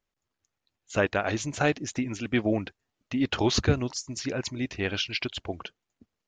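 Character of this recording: noise floor -85 dBFS; spectral tilt -4.5 dB/oct

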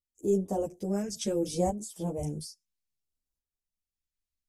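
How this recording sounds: phasing stages 2, 0.66 Hz, lowest notch 790–2000 Hz; tremolo saw up 0.59 Hz, depth 50%; a shimmering, thickened sound

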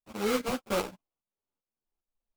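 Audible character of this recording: tremolo saw up 2.5 Hz, depth 70%; aliases and images of a low sample rate 1800 Hz, jitter 20%; a shimmering, thickened sound

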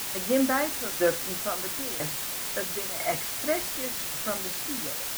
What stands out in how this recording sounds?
tremolo saw down 1 Hz, depth 90%; a quantiser's noise floor 6-bit, dither triangular

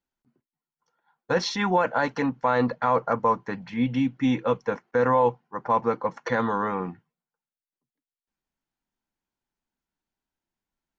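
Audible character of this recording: noise floor -95 dBFS; spectral tilt -4.5 dB/oct

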